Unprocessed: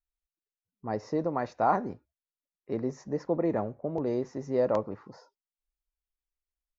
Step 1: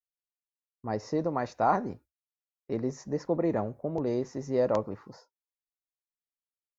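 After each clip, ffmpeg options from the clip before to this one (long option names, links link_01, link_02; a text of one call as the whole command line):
ffmpeg -i in.wav -af "aemphasis=mode=production:type=cd,agate=range=-33dB:threshold=-47dB:ratio=3:detection=peak,lowshelf=frequency=110:gain=5" out.wav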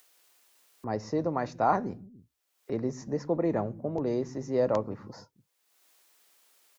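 ffmpeg -i in.wav -filter_complex "[0:a]acrossover=split=270[link_01][link_02];[link_01]aecho=1:1:111|291:0.335|0.224[link_03];[link_02]acompressor=mode=upward:threshold=-38dB:ratio=2.5[link_04];[link_03][link_04]amix=inputs=2:normalize=0" out.wav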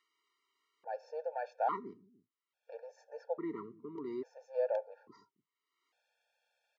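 ffmpeg -i in.wav -af "aeval=exprs='0.282*(cos(1*acos(clip(val(0)/0.282,-1,1)))-cos(1*PI/2))+0.0141*(cos(4*acos(clip(val(0)/0.282,-1,1)))-cos(4*PI/2))':channel_layout=same,highpass=380,lowpass=3000,afftfilt=real='re*gt(sin(2*PI*0.59*pts/sr)*(1-2*mod(floor(b*sr/1024/460),2)),0)':imag='im*gt(sin(2*PI*0.59*pts/sr)*(1-2*mod(floor(b*sr/1024/460),2)),0)':win_size=1024:overlap=0.75,volume=-5dB" out.wav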